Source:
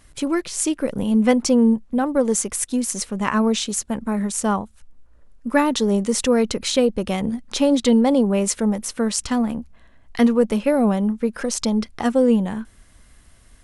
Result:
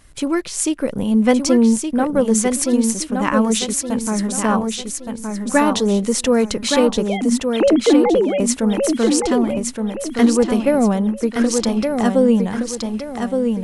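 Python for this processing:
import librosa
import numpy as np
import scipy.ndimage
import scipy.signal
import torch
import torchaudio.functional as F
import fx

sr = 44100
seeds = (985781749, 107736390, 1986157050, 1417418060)

y = fx.sine_speech(x, sr, at=(7.06, 8.4))
y = fx.echo_feedback(y, sr, ms=1169, feedback_pct=37, wet_db=-5.0)
y = y * librosa.db_to_amplitude(2.0)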